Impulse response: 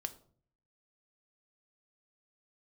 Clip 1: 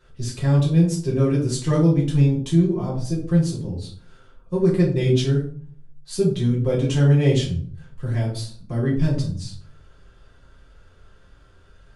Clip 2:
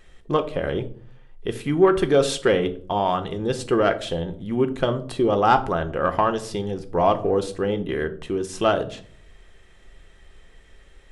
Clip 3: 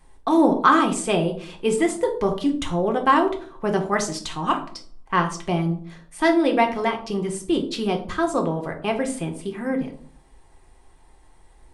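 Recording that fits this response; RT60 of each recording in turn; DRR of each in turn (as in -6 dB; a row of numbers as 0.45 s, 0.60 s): 2; 0.50 s, 0.50 s, 0.50 s; -5.5 dB, 9.0 dB, 3.5 dB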